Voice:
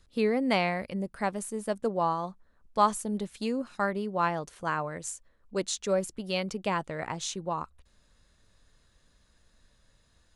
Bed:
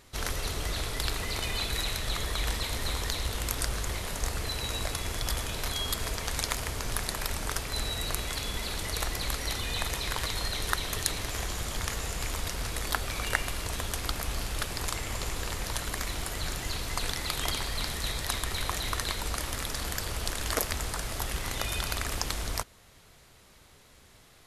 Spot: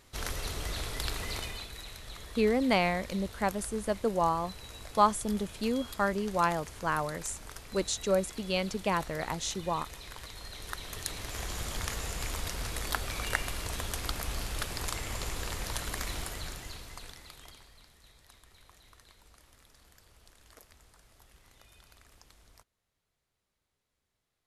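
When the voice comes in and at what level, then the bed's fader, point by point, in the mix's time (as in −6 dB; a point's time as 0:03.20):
2.20 s, 0.0 dB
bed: 0:01.36 −3.5 dB
0:01.72 −13.5 dB
0:10.38 −13.5 dB
0:11.59 −2.5 dB
0:16.18 −2.5 dB
0:17.90 −27 dB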